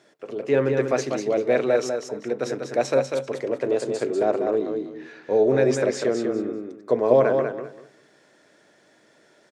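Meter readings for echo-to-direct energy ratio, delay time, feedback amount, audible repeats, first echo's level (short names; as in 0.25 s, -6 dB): -5.5 dB, 0.195 s, 22%, 3, -5.5 dB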